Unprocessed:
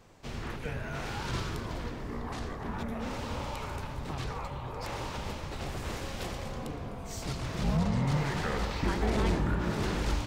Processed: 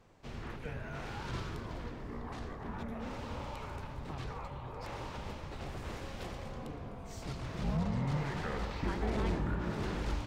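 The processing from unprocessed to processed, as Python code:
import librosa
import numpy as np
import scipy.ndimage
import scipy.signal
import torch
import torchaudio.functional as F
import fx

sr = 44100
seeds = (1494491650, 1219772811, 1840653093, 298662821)

y = fx.high_shelf(x, sr, hz=4500.0, db=-7.5)
y = y * 10.0 ** (-5.0 / 20.0)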